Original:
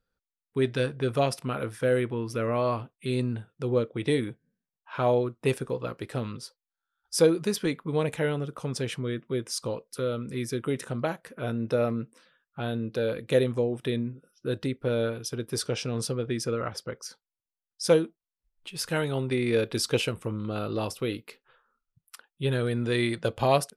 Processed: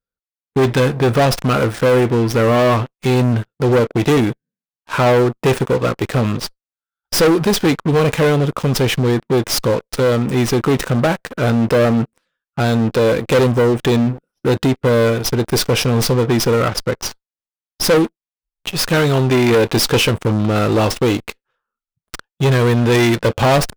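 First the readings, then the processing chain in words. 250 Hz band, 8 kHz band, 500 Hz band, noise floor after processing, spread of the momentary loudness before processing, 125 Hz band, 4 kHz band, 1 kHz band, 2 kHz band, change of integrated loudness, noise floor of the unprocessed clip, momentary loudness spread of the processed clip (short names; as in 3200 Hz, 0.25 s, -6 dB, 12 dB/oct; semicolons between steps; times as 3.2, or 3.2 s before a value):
+14.0 dB, +12.0 dB, +12.0 dB, under -85 dBFS, 10 LU, +14.5 dB, +13.5 dB, +14.0 dB, +14.0 dB, +13.0 dB, under -85 dBFS, 7 LU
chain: sample leveller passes 5; running maximum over 3 samples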